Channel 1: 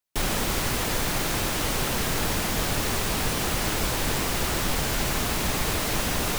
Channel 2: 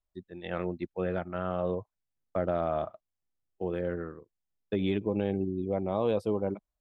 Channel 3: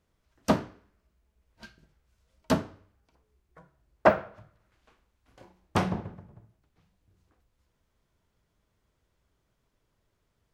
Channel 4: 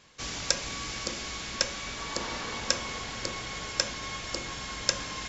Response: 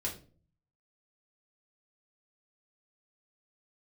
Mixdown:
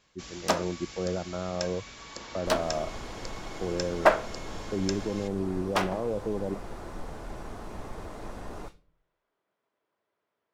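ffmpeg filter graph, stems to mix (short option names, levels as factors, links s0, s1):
-filter_complex "[0:a]lowpass=9100,equalizer=f=120:t=o:w=2.2:g=-6,adelay=2300,volume=0.299,asplit=2[s0][s1];[s1]volume=0.168[s2];[1:a]volume=1.26[s3];[2:a]highpass=440,highshelf=f=3200:g=8,adynamicsmooth=sensitivity=7:basefreq=2000,volume=0.891,asplit=2[s4][s5];[s5]volume=0.237[s6];[3:a]volume=0.355[s7];[s0][s3]amix=inputs=2:normalize=0,lowpass=1100,alimiter=limit=0.0891:level=0:latency=1,volume=1[s8];[4:a]atrim=start_sample=2205[s9];[s2][s6]amix=inputs=2:normalize=0[s10];[s10][s9]afir=irnorm=-1:irlink=0[s11];[s4][s7][s8][s11]amix=inputs=4:normalize=0"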